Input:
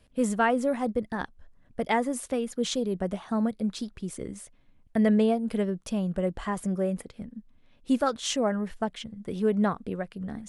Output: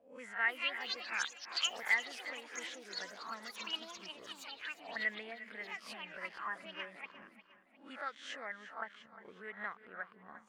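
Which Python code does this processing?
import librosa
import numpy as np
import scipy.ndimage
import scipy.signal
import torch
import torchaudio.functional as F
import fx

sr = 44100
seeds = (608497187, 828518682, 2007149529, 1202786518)

y = fx.spec_swells(x, sr, rise_s=0.32)
y = fx.auto_wah(y, sr, base_hz=700.0, top_hz=2000.0, q=7.6, full_db=-23.0, direction='up')
y = fx.echo_pitch(y, sr, ms=360, semitones=7, count=3, db_per_echo=-3.0)
y = fx.echo_feedback(y, sr, ms=355, feedback_pct=46, wet_db=-15)
y = y * 10.0 ** (4.0 / 20.0)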